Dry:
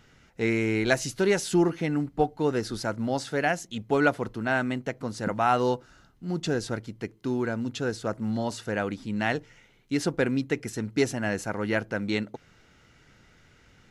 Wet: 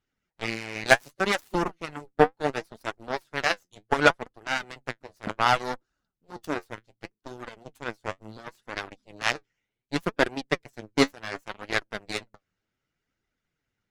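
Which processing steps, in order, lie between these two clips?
added harmonics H 3 -35 dB, 4 -27 dB, 7 -17 dB, 8 -43 dB, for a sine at -7 dBFS; harmonic-percussive split percussive +9 dB; flange 0.68 Hz, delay 2.3 ms, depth 9 ms, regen +46%; gain +1.5 dB

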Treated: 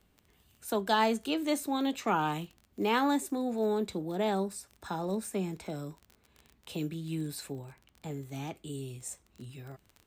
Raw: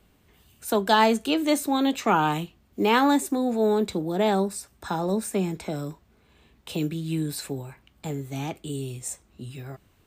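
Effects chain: 7.52–8.11 high shelf 5400 Hz -5.5 dB; crackle 21/s -33 dBFS; gain -7.5 dB

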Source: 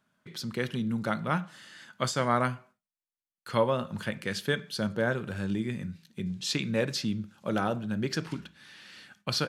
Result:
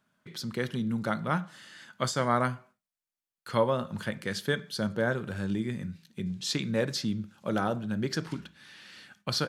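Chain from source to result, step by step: dynamic EQ 2600 Hz, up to -6 dB, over -53 dBFS, Q 3.9

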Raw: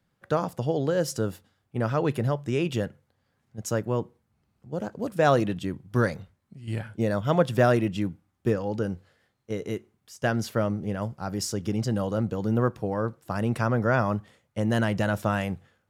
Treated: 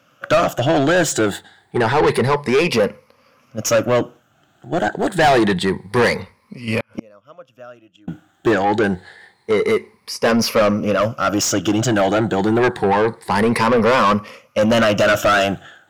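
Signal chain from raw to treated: moving spectral ripple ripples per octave 0.89, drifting +0.27 Hz, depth 13 dB; 6.8–8.08 flipped gate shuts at -24 dBFS, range -40 dB; overdrive pedal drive 28 dB, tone 3800 Hz, clips at -6 dBFS

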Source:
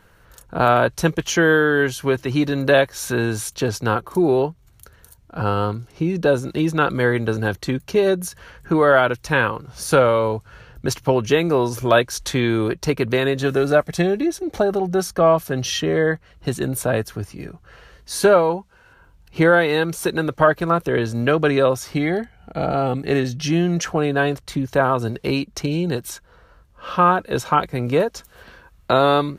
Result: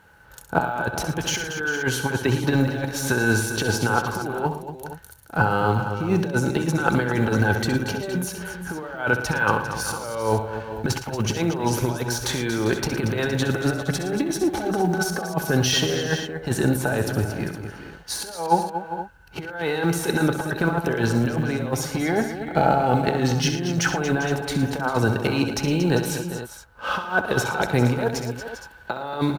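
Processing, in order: G.711 law mismatch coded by A; de-esser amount 55%; HPF 49 Hz; negative-ratio compressor -23 dBFS, ratio -0.5; small resonant body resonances 840/1500 Hz, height 16 dB, ringing for 85 ms; on a send: tapped delay 65/112/232/398/465 ms -10/-13/-10.5/-13/-13.5 dB

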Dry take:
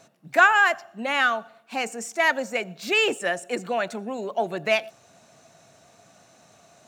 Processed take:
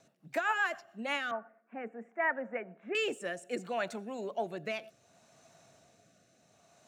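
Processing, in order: 1.31–2.95 elliptic band-pass 210–1900 Hz, stop band 40 dB; limiter -13 dBFS, peak gain reduction 9 dB; rotary speaker horn 7.5 Hz, later 0.65 Hz, at 0.69; gain -6.5 dB

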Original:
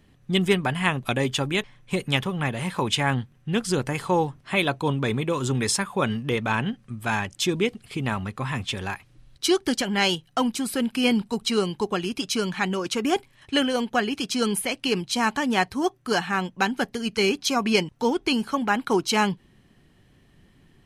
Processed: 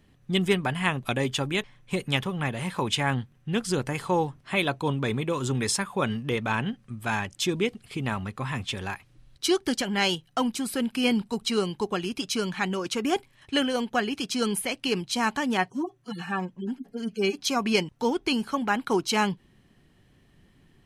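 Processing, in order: 15.57–17.37 median-filter separation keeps harmonic; gain -2.5 dB

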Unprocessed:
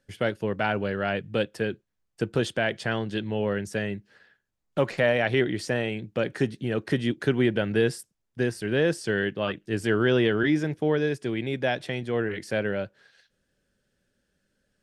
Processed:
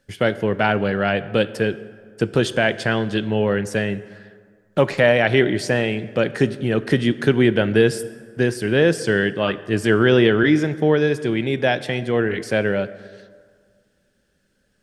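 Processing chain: plate-style reverb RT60 1.9 s, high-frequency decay 0.55×, DRR 14 dB; gain +7 dB

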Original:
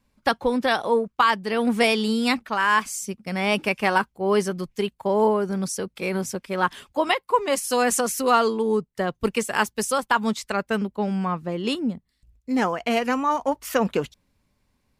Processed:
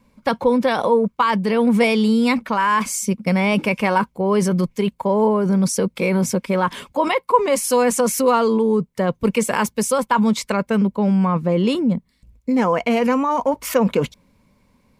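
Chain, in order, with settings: in parallel at +1.5 dB: negative-ratio compressor -30 dBFS, ratio -1; on the sum: small resonant body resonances 200/500/970/2200 Hz, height 9 dB, ringing for 20 ms; gain -4.5 dB

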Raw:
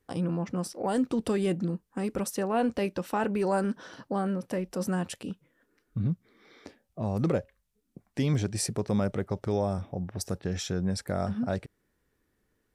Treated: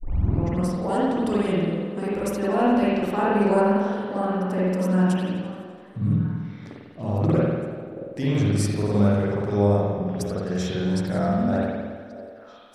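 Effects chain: tape start at the beginning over 0.37 s; on a send: delay with a stepping band-pass 0.631 s, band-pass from 470 Hz, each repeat 1.4 oct, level -11.5 dB; on the sum: spring tank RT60 1.4 s, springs 49 ms, chirp 45 ms, DRR -8 dB; warbling echo 85 ms, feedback 74%, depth 110 cents, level -17.5 dB; gain -2 dB

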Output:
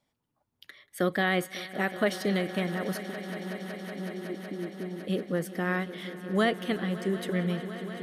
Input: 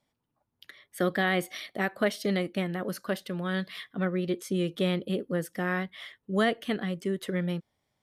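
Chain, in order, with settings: 3.02–5.03 vocal tract filter u; swelling echo 0.186 s, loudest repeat 5, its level -17 dB

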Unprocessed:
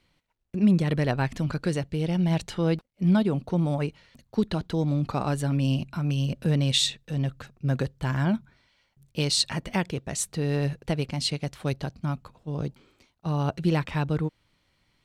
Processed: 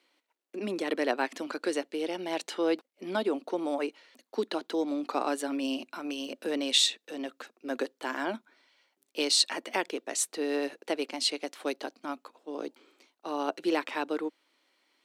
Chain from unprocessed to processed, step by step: steep high-pass 270 Hz 48 dB/oct

